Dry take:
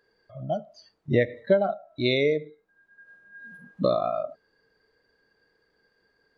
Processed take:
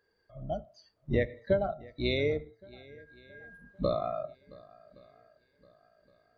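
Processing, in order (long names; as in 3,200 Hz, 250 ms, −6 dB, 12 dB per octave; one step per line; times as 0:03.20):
sub-octave generator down 2 octaves, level −3 dB
feedback echo with a long and a short gap by turns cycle 1,118 ms, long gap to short 1.5 to 1, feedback 32%, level −22.5 dB
level −6.5 dB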